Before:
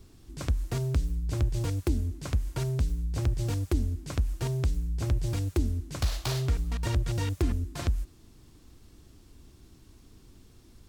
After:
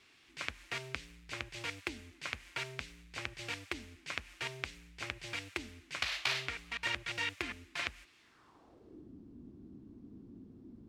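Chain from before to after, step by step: band-pass sweep 2.3 kHz -> 240 Hz, 8.19–9.11 s; trim +10.5 dB

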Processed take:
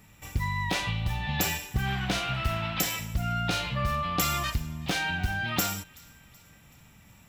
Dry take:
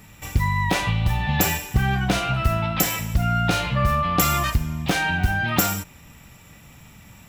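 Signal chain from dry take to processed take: 1.85–2.83 s: band noise 690–3100 Hz -36 dBFS; dynamic bell 4 kHz, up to +6 dB, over -38 dBFS, Q 0.79; feedback echo behind a high-pass 377 ms, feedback 50%, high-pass 1.7 kHz, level -23 dB; trim -8.5 dB

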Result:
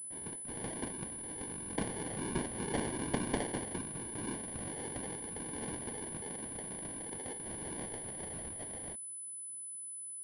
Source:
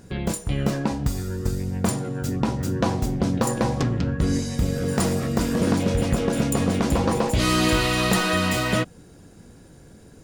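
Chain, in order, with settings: median filter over 9 samples; Doppler pass-by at 2.71 s, 12 m/s, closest 5.4 m; high-pass 390 Hz 12 dB/octave; peaking EQ 750 Hz -11.5 dB 1.9 oct; in parallel at -1.5 dB: gain riding within 5 dB 0.5 s; on the sum: whisper effect; rotary cabinet horn 0.85 Hz, later 7.5 Hz, at 6.85 s; sample-and-hold 34×; class-D stage that switches slowly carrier 10 kHz

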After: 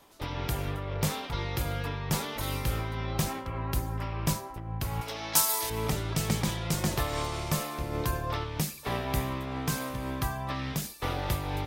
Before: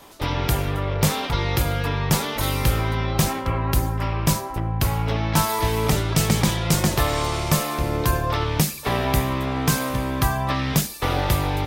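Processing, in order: 5.01–5.70 s: tone controls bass -15 dB, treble +14 dB; random flutter of the level, depth 60%; trim -7 dB

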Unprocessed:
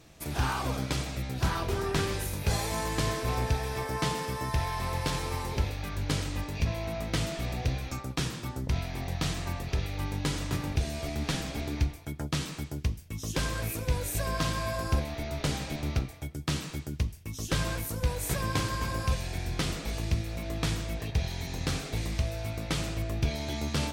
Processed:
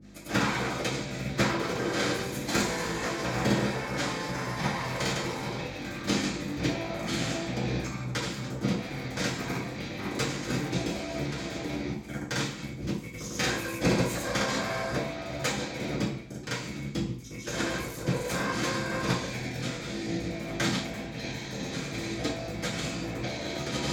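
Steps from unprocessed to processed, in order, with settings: granulator 100 ms, grains 20 per s, pitch spread up and down by 0 st; hum 50 Hz, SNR 12 dB; Chebyshev shaper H 2 -10 dB, 3 -7 dB, 4 -12 dB, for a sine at -15 dBFS; reverberation RT60 0.50 s, pre-delay 3 ms, DRR -11 dB

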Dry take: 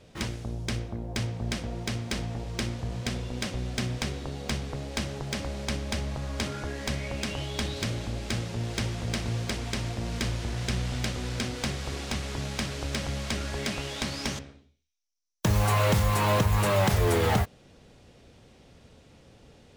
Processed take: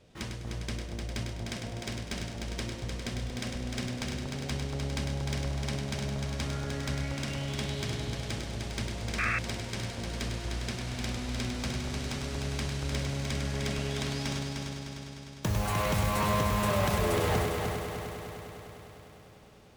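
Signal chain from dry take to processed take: multi-head delay 101 ms, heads first and third, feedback 72%, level -6 dB; painted sound noise, 9.18–9.39 s, 1.1–2.7 kHz -24 dBFS; trim -6 dB

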